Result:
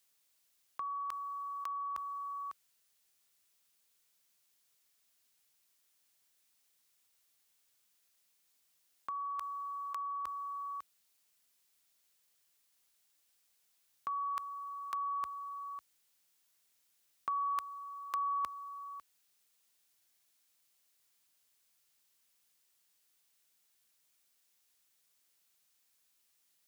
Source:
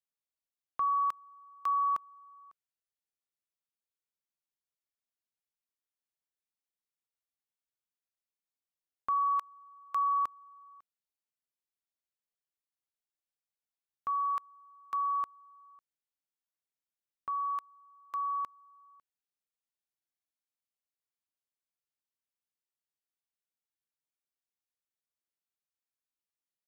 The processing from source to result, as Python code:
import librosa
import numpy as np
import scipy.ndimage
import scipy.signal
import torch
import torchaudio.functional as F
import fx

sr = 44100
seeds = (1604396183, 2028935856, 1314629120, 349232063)

y = scipy.signal.sosfilt(scipy.signal.butter(4, 57.0, 'highpass', fs=sr, output='sos'), x)
y = fx.high_shelf(y, sr, hz=2000.0, db=9.5)
y = fx.over_compress(y, sr, threshold_db=-38.0, ratio=-1.0)
y = y * 10.0 ** (2.0 / 20.0)